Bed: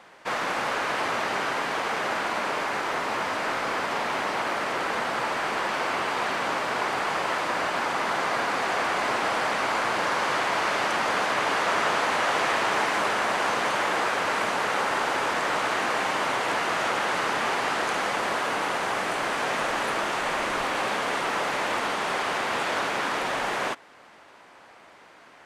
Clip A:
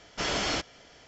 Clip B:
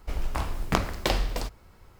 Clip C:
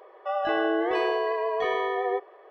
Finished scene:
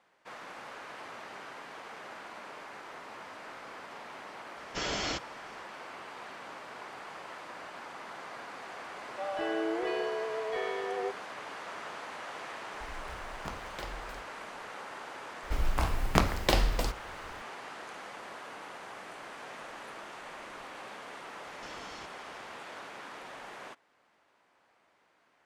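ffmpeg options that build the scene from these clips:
ffmpeg -i bed.wav -i cue0.wav -i cue1.wav -i cue2.wav -filter_complex "[1:a]asplit=2[link_01][link_02];[2:a]asplit=2[link_03][link_04];[0:a]volume=-18dB[link_05];[3:a]equalizer=frequency=1100:width_type=o:width=0.77:gain=-9[link_06];[link_02]acompressor=threshold=-42dB:ratio=6:attack=3.2:release=140:knee=1:detection=peak[link_07];[link_01]atrim=end=1.07,asetpts=PTS-STARTPTS,volume=-4.5dB,afade=type=in:duration=0.004:curve=hsin,afade=type=out:start_time=1.066:duration=0.004:curve=hsin,adelay=201537S[link_08];[link_06]atrim=end=2.5,asetpts=PTS-STARTPTS,volume=-6dB,afade=type=in:duration=0.004:curve=hsin,afade=type=out:start_time=2.496:duration=0.004:curve=hsin,adelay=8920[link_09];[link_03]atrim=end=1.99,asetpts=PTS-STARTPTS,volume=-17.5dB,afade=type=in:duration=0.004:curve=hsin,afade=type=out:start_time=1.986:duration=0.004:curve=hsin,adelay=12730[link_10];[link_04]atrim=end=1.99,asetpts=PTS-STARTPTS,afade=type=in:duration=0.004:curve=hsin,afade=type=out:start_time=1.986:duration=0.004:curve=hsin,adelay=15430[link_11];[link_07]atrim=end=1.07,asetpts=PTS-STARTPTS,volume=-4.5dB,afade=type=in:duration=0.004:curve=hsin,afade=type=out:start_time=1.066:duration=0.004:curve=hsin,adelay=21450[link_12];[link_05][link_08][link_09][link_10][link_11][link_12]amix=inputs=6:normalize=0" out.wav

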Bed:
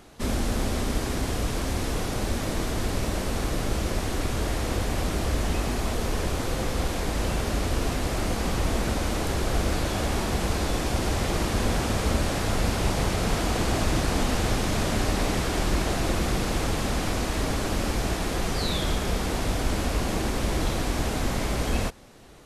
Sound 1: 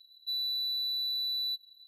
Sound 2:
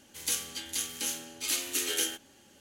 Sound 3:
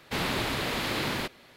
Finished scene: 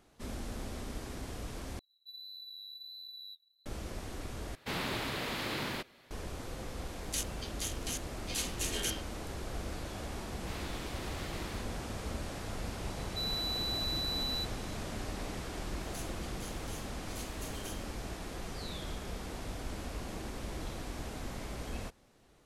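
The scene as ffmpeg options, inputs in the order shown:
ffmpeg -i bed.wav -i cue0.wav -i cue1.wav -i cue2.wav -filter_complex "[1:a]asplit=2[link_01][link_02];[3:a]asplit=2[link_03][link_04];[2:a]asplit=2[link_05][link_06];[0:a]volume=-14.5dB[link_07];[link_01]flanger=delay=5.7:depth=5.5:regen=-32:speed=1.5:shape=sinusoidal[link_08];[link_05]afwtdn=0.00891[link_09];[link_04]acrossover=split=530[link_10][link_11];[link_11]adelay=90[link_12];[link_10][link_12]amix=inputs=2:normalize=0[link_13];[link_07]asplit=3[link_14][link_15][link_16];[link_14]atrim=end=1.794[link_17];[link_08]atrim=end=1.87,asetpts=PTS-STARTPTS,volume=-11.5dB[link_18];[link_15]atrim=start=3.656:end=4.554[link_19];[link_03]atrim=end=1.56,asetpts=PTS-STARTPTS,volume=-6.5dB[link_20];[link_16]atrim=start=6.106[link_21];[link_09]atrim=end=2.6,asetpts=PTS-STARTPTS,volume=-5dB,afade=type=in:duration=0.004:curve=hsin,afade=type=out:start_time=2.596:duration=0.004:curve=hsin,adelay=6860[link_22];[link_13]atrim=end=1.56,asetpts=PTS-STARTPTS,volume=-16dB,afade=type=in:duration=0.004:curve=hsin,afade=type=out:start_time=1.556:duration=0.004:curve=hsin,adelay=452466S[link_23];[link_02]atrim=end=1.87,asetpts=PTS-STARTPTS,volume=-4dB,afade=type=in:duration=0.004:curve=hsin,afade=type=out:start_time=1.866:duration=0.004:curve=hsin,adelay=12890[link_24];[link_06]atrim=end=2.6,asetpts=PTS-STARTPTS,volume=-17.5dB,afade=type=in:duration=0.004:curve=hsin,afade=type=out:start_time=2.596:duration=0.004:curve=hsin,adelay=15670[link_25];[link_17][link_18]acrossfade=duration=0.004:curve1=hsin:curve2=hsin[link_26];[link_26][link_19]acrossfade=duration=0.004:curve1=hsin:curve2=hsin[link_27];[link_27][link_20]acrossfade=duration=0.004:curve1=hsin:curve2=hsin[link_28];[link_28][link_21]acrossfade=duration=0.004:curve1=hsin:curve2=hsin[link_29];[link_29][link_22][link_23][link_24][link_25]amix=inputs=5:normalize=0" out.wav

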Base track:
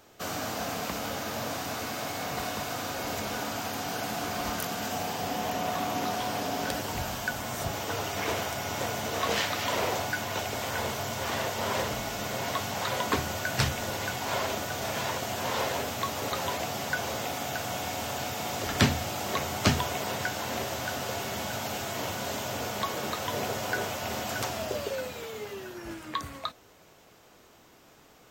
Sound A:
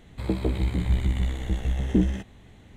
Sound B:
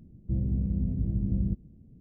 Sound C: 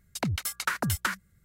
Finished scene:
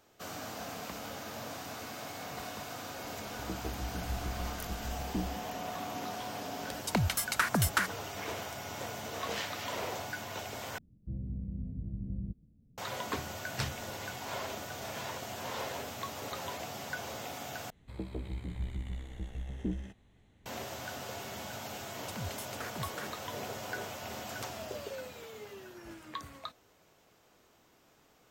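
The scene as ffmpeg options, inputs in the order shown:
ffmpeg -i bed.wav -i cue0.wav -i cue1.wav -i cue2.wav -filter_complex "[1:a]asplit=2[link_01][link_02];[3:a]asplit=2[link_03][link_04];[0:a]volume=-8.5dB[link_05];[2:a]bandreject=frequency=360:width=7.4[link_06];[link_04]alimiter=limit=-23.5dB:level=0:latency=1:release=71[link_07];[link_05]asplit=3[link_08][link_09][link_10];[link_08]atrim=end=10.784[link_11];[link_06]atrim=end=2,asetpts=PTS-STARTPTS,volume=-10.5dB[link_12];[link_09]atrim=start=12.776:end=17.704[link_13];[link_02]atrim=end=2.76,asetpts=PTS-STARTPTS,volume=-14dB[link_14];[link_10]atrim=start=20.456[link_15];[link_01]atrim=end=2.76,asetpts=PTS-STARTPTS,volume=-14.5dB,afade=type=in:duration=0.004:curve=hsin,afade=type=out:start_time=2.756:duration=0.004:curve=hsin,adelay=3200[link_16];[link_03]atrim=end=1.44,asetpts=PTS-STARTPTS,afade=type=in:duration=0.004:curve=hsin,afade=type=out:start_time=1.436:duration=0.004:curve=hsin,adelay=6720[link_17];[link_07]atrim=end=1.44,asetpts=PTS-STARTPTS,volume=-10dB,afade=type=in:duration=0.004:curve=hsin,afade=type=out:start_time=1.436:duration=0.004:curve=hsin,adelay=21930[link_18];[link_11][link_12]acrossfade=duration=0.004:curve1=hsin:curve2=hsin[link_19];[link_19][link_13]acrossfade=duration=0.004:curve1=hsin:curve2=hsin[link_20];[link_20][link_14]acrossfade=duration=0.004:curve1=hsin:curve2=hsin[link_21];[link_21][link_15]acrossfade=duration=0.004:curve1=hsin:curve2=hsin[link_22];[link_22][link_16][link_17][link_18]amix=inputs=4:normalize=0" out.wav

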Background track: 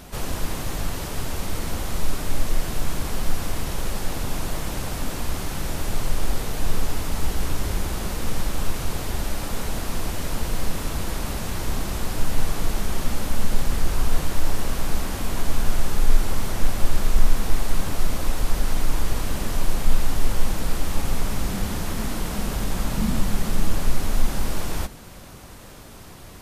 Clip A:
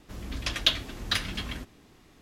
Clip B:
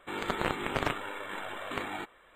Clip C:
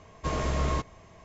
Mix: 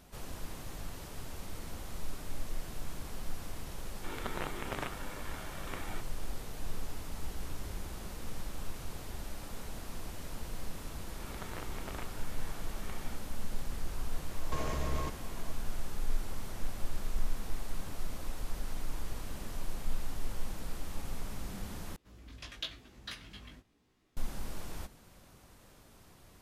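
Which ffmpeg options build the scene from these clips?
ffmpeg -i bed.wav -i cue0.wav -i cue1.wav -i cue2.wav -filter_complex "[2:a]asplit=2[link_01][link_02];[0:a]volume=-15.5dB[link_03];[3:a]acompressor=threshold=-32dB:ratio=6:attack=3.2:release=140:knee=1:detection=peak[link_04];[1:a]flanger=delay=15.5:depth=4.4:speed=0.98[link_05];[link_03]asplit=2[link_06][link_07];[link_06]atrim=end=21.964[link_08];[link_05]atrim=end=2.21,asetpts=PTS-STARTPTS,volume=-13dB[link_09];[link_07]atrim=start=24.166[link_10];[link_01]atrim=end=2.35,asetpts=PTS-STARTPTS,volume=-8.5dB,afade=type=in:duration=0.004:curve=hsin,afade=type=out:start_time=2.346:duration=0.004:curve=hsin,adelay=3960[link_11];[link_02]atrim=end=2.35,asetpts=PTS-STARTPTS,volume=-15dB,afade=type=in:duration=0.004:curve=hsin,afade=type=out:start_time=2.346:duration=0.004:curve=hsin,adelay=11120[link_12];[link_04]atrim=end=1.24,asetpts=PTS-STARTPTS,afade=type=in:duration=0.004:curve=hsin,afade=type=out:start_time=1.236:duration=0.004:curve=hsin,adelay=629748S[link_13];[link_08][link_09]acrossfade=duration=0.004:curve1=hsin:curve2=hsin[link_14];[link_14][link_10]acrossfade=duration=0.004:curve1=hsin:curve2=hsin[link_15];[link_15][link_11][link_12][link_13]amix=inputs=4:normalize=0" out.wav

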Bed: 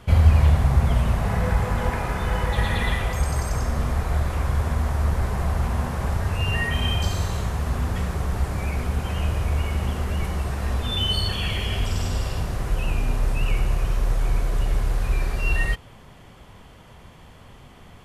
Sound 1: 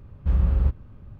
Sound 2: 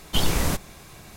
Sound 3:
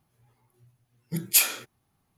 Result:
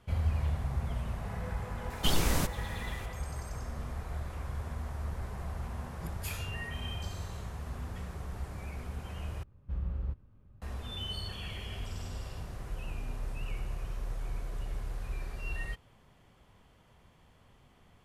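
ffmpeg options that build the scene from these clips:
ffmpeg -i bed.wav -i cue0.wav -i cue1.wav -i cue2.wav -filter_complex "[0:a]volume=-15dB[link_01];[3:a]acrossover=split=2700[link_02][link_03];[link_03]acompressor=threshold=-27dB:ratio=4:attack=1:release=60[link_04];[link_02][link_04]amix=inputs=2:normalize=0[link_05];[link_01]asplit=2[link_06][link_07];[link_06]atrim=end=9.434[link_08];[1:a]atrim=end=1.19,asetpts=PTS-STARTPTS,volume=-14.5dB[link_09];[link_07]atrim=start=10.616[link_10];[2:a]atrim=end=1.16,asetpts=PTS-STARTPTS,volume=-5.5dB,afade=type=in:duration=0.004:curve=hsin,afade=type=out:start_time=1.156:duration=0.004:curve=hsin,adelay=1900[link_11];[link_05]atrim=end=2.17,asetpts=PTS-STARTPTS,volume=-13.5dB,afade=type=in:duration=0.004:curve=hsin,afade=type=out:start_time=2.166:duration=0.004:curve=hsin,adelay=4900[link_12];[link_08][link_09]acrossfade=duration=0.004:curve1=hsin:curve2=hsin[link_13];[link_13][link_10]acrossfade=duration=0.004:curve1=hsin:curve2=hsin[link_14];[link_14][link_11][link_12]amix=inputs=3:normalize=0" out.wav

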